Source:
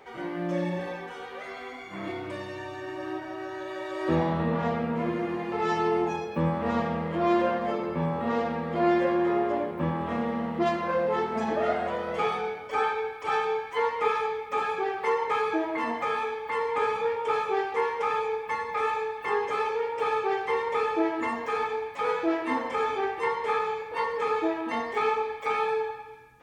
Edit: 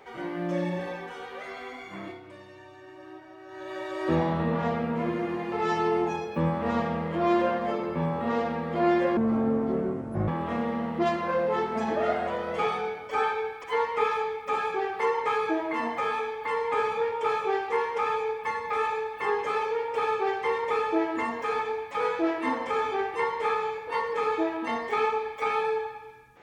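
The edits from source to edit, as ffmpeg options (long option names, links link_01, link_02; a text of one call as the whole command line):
ffmpeg -i in.wav -filter_complex "[0:a]asplit=6[link_01][link_02][link_03][link_04][link_05][link_06];[link_01]atrim=end=2.2,asetpts=PTS-STARTPTS,afade=type=out:start_time=1.89:duration=0.31:silence=0.281838[link_07];[link_02]atrim=start=2.2:end=3.45,asetpts=PTS-STARTPTS,volume=-11dB[link_08];[link_03]atrim=start=3.45:end=9.174,asetpts=PTS-STARTPTS,afade=type=in:duration=0.31:silence=0.281838[link_09];[link_04]atrim=start=9.17:end=9.88,asetpts=PTS-STARTPTS,asetrate=28224,aresample=44100,atrim=end_sample=48923,asetpts=PTS-STARTPTS[link_10];[link_05]atrim=start=9.876:end=13.242[link_11];[link_06]atrim=start=13.678[link_12];[link_07][link_08][link_09]concat=n=3:v=0:a=1[link_13];[link_13][link_10]acrossfade=duration=0.004:curve1=hsin:curve2=hsin[link_14];[link_14][link_11]acrossfade=duration=0.004:curve1=hsin:curve2=hsin[link_15];[link_15][link_12]acrossfade=duration=0.004:curve1=hsin:curve2=hsin" out.wav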